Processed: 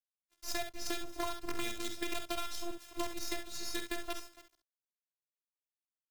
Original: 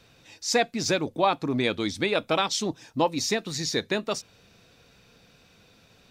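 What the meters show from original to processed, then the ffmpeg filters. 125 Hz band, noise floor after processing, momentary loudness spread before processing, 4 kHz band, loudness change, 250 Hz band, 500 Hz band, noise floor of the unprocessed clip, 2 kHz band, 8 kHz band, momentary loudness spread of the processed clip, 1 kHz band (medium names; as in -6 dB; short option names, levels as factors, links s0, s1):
-21.0 dB, under -85 dBFS, 5 LU, -12.0 dB, -13.5 dB, -14.0 dB, -16.5 dB, -59 dBFS, -12.5 dB, -11.0 dB, 6 LU, -15.0 dB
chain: -filter_complex "[0:a]asplit=2[s0][s1];[s1]aecho=0:1:288|576|864|1152:0.1|0.048|0.023|0.0111[s2];[s0][s2]amix=inputs=2:normalize=0,acrusher=bits=4:dc=4:mix=0:aa=0.000001,afftfilt=real='hypot(re,im)*cos(PI*b)':imag='0':win_size=512:overlap=0.75,agate=range=0.0224:threshold=0.00316:ratio=3:detection=peak,asplit=2[s3][s4];[s4]aecho=0:1:48|66:0.335|0.299[s5];[s3][s5]amix=inputs=2:normalize=0,acrossover=split=170[s6][s7];[s7]acompressor=threshold=0.0282:ratio=4[s8];[s6][s8]amix=inputs=2:normalize=0,volume=0.596"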